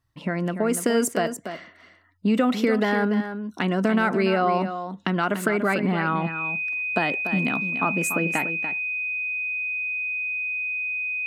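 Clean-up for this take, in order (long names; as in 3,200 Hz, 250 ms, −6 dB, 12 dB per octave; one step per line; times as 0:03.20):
notch filter 2,500 Hz, Q 30
echo removal 290 ms −9.5 dB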